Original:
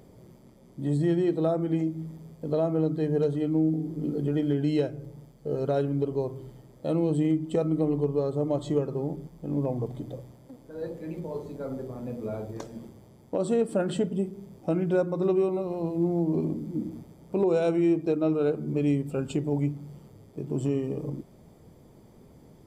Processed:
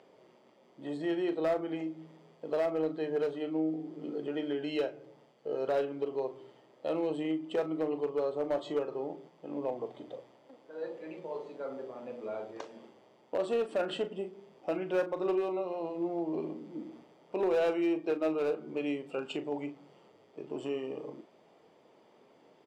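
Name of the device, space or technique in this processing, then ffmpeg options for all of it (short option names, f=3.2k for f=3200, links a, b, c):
megaphone: -filter_complex "[0:a]highpass=510,lowpass=3.9k,equalizer=f=2.8k:t=o:w=0.21:g=8,asoftclip=type=hard:threshold=-24.5dB,asplit=2[a][b];[b]adelay=38,volume=-11dB[c];[a][c]amix=inputs=2:normalize=0"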